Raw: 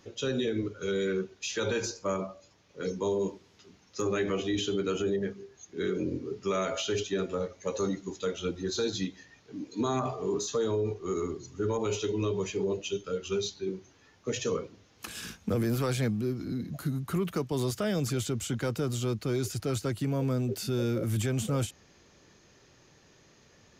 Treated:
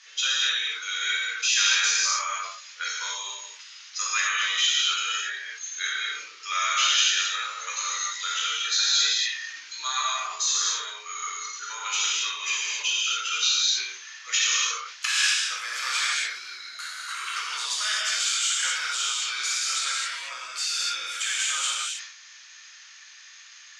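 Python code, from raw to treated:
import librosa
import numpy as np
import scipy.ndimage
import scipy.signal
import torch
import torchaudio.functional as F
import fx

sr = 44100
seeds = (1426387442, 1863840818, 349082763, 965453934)

p1 = scipy.signal.sosfilt(scipy.signal.butter(4, 7700.0, 'lowpass', fs=sr, output='sos'), x)
p2 = fx.rev_gated(p1, sr, seeds[0], gate_ms=300, shape='flat', drr_db=-7.0)
p3 = fx.rider(p2, sr, range_db=10, speed_s=0.5)
p4 = p2 + (p3 * 10.0 ** (2.0 / 20.0))
p5 = scipy.signal.sosfilt(scipy.signal.butter(4, 1500.0, 'highpass', fs=sr, output='sos'), p4)
p6 = fx.sustainer(p5, sr, db_per_s=73.0)
y = p6 * 10.0 ** (2.0 / 20.0)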